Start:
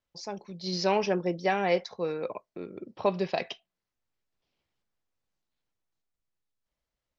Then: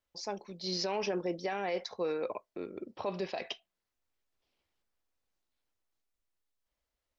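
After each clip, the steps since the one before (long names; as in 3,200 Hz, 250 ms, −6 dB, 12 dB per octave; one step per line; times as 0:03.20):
parametric band 150 Hz −10 dB 0.69 octaves
brickwall limiter −25 dBFS, peak gain reduction 11.5 dB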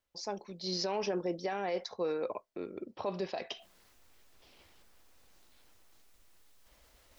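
reversed playback
upward compression, threshold −43 dBFS
reversed playback
dynamic equaliser 2,400 Hz, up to −4 dB, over −53 dBFS, Q 1.6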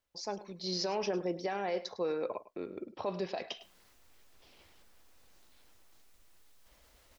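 single-tap delay 104 ms −16.5 dB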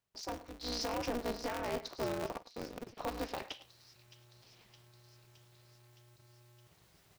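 delay with a high-pass on its return 616 ms, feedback 71%, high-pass 4,000 Hz, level −11 dB
ring modulator with a square carrier 120 Hz
level −3 dB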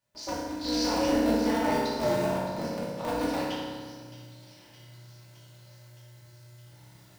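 convolution reverb RT60 1.7 s, pre-delay 3 ms, DRR −9.5 dB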